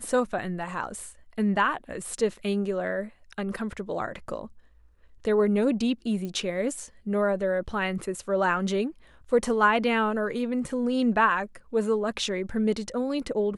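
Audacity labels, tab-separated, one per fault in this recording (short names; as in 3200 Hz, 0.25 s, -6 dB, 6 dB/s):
6.250000	6.250000	pop -23 dBFS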